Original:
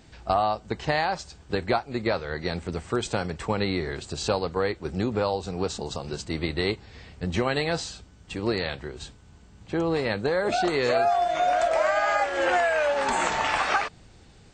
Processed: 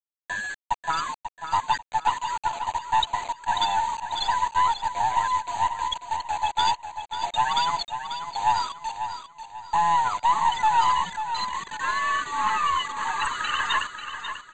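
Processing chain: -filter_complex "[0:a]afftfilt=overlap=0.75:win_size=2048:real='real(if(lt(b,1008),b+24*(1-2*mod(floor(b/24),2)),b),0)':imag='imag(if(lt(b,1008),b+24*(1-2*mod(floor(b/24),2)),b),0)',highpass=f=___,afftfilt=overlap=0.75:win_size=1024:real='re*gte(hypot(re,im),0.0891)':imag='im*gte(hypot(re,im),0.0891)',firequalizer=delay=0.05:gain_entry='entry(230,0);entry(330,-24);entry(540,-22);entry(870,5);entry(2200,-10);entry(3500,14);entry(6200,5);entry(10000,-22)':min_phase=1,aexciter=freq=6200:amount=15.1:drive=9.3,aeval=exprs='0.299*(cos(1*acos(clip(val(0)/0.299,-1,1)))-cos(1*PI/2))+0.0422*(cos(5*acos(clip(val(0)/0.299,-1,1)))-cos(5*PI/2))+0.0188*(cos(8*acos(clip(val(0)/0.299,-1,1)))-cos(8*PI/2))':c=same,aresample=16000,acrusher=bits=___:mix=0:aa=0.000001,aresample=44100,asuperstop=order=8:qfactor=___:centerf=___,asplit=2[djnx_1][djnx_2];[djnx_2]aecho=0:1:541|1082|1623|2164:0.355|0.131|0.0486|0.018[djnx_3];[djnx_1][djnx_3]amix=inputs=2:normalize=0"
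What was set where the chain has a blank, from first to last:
670, 5, 3.3, 5300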